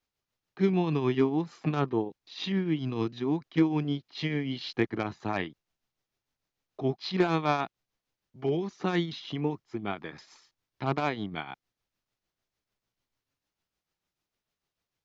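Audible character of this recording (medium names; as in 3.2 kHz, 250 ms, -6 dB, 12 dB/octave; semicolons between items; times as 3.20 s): tremolo triangle 6.7 Hz, depth 60%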